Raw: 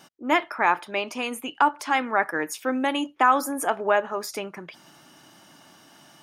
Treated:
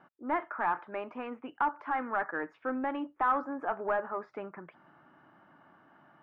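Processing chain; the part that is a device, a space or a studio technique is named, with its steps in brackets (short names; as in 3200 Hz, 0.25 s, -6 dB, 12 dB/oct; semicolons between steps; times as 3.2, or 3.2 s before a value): overdriven synthesiser ladder filter (soft clip -17 dBFS, distortion -10 dB; ladder low-pass 1800 Hz, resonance 35%)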